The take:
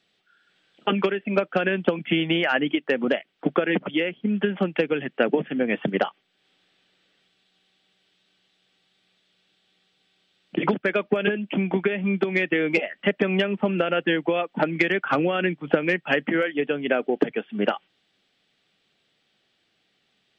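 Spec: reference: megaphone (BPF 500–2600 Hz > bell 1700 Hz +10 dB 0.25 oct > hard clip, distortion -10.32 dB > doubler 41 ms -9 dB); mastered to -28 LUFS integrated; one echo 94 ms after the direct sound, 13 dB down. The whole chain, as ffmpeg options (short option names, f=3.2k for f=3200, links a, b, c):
-filter_complex "[0:a]highpass=500,lowpass=2.6k,equalizer=f=1.7k:t=o:w=0.25:g=10,aecho=1:1:94:0.224,asoftclip=type=hard:threshold=-19dB,asplit=2[a][b];[b]adelay=41,volume=-9dB[c];[a][c]amix=inputs=2:normalize=0,volume=-2dB"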